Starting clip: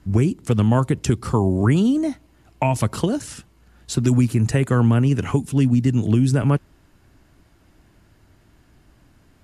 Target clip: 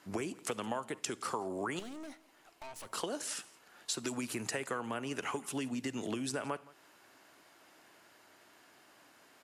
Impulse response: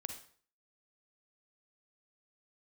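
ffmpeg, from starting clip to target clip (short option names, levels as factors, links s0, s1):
-filter_complex "[0:a]highpass=550,acompressor=threshold=0.0158:ratio=6,asettb=1/sr,asplit=3[s0][s1][s2];[s0]atrim=end=1.794[s3];[s1]atrim=start=1.79:end=2.87,asetpts=PTS-STARTPTS,afade=t=in:d=0.004:c=qsin,afade=t=out:st=1.076:d=0.004:c=qsin,aeval=exprs='(tanh(200*val(0)+0.65)-tanh(0.65))/200':c=same[s4];[s2]atrim=start=2.866[s5];[s3][s4]acrossfade=d=0.004:c1=hsin:c2=qsin[s6];[s6][s5]acrossfade=d=0.004:c1=qsin:c2=hsin,aecho=1:1:169:0.0841,asplit=2[s7][s8];[1:a]atrim=start_sample=2205[s9];[s8][s9]afir=irnorm=-1:irlink=0,volume=0.299[s10];[s7][s10]amix=inputs=2:normalize=0"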